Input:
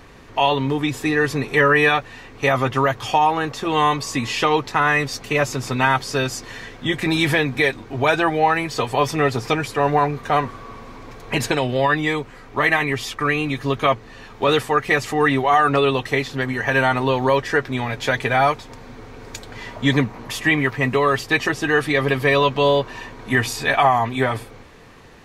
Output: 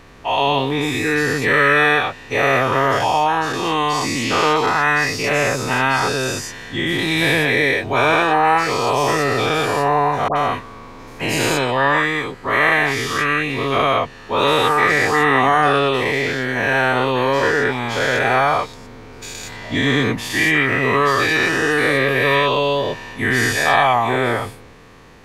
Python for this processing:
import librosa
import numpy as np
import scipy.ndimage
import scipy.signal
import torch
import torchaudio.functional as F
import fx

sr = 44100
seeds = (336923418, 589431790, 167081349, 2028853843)

y = fx.spec_dilate(x, sr, span_ms=240)
y = fx.dispersion(y, sr, late='highs', ms=80.0, hz=1300.0, at=(10.28, 10.88))
y = F.gain(torch.from_numpy(y), -4.5).numpy()